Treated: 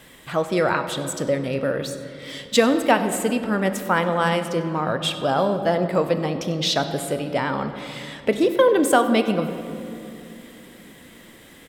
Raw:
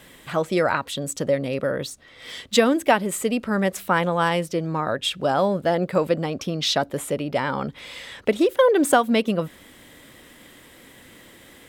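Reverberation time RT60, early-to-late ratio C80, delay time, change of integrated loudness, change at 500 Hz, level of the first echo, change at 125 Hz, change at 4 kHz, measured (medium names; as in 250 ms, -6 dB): 3.0 s, 10.0 dB, 96 ms, +0.5 dB, +0.5 dB, -19.5 dB, +1.0 dB, +0.5 dB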